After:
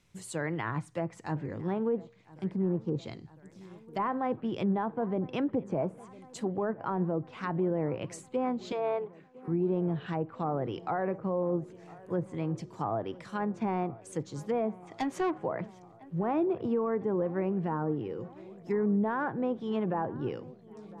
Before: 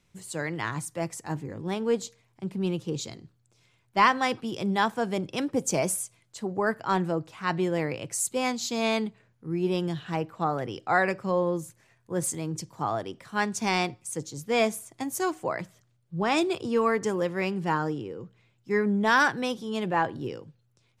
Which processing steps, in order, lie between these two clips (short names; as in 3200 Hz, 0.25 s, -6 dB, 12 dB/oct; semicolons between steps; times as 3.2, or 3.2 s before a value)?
dynamic EQ 5300 Hz, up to -7 dB, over -48 dBFS, Q 1.3; treble ducked by the level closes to 870 Hz, closed at -24.5 dBFS; 2.51–2.99 bell 2900 Hz -13 dB 1 oct; 8.72–9.48 elliptic band-pass 400–9600 Hz; limiter -21.5 dBFS, peak gain reduction 8.5 dB; 14.87–15.38 overdrive pedal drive 15 dB, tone 3900 Hz, clips at -21.5 dBFS; dark delay 1.006 s, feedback 68%, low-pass 2100 Hz, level -20.5 dB